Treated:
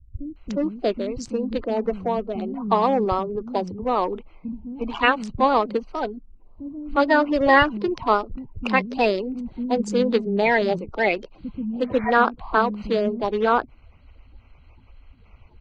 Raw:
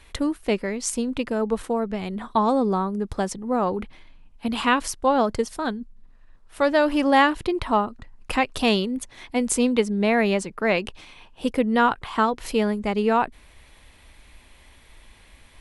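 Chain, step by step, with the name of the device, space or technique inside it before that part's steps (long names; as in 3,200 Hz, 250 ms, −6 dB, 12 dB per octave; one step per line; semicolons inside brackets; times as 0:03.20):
adaptive Wiener filter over 25 samples
0:07.57–0:08.35: high-shelf EQ 5,200 Hz +10.5 dB
0:11.50–0:11.72: healed spectral selection 620–2,400 Hz both
clip after many re-uploads (low-pass filter 5,200 Hz 24 dB per octave; spectral magnitudes quantised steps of 30 dB)
multiband delay without the direct sound lows, highs 360 ms, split 230 Hz
level +3 dB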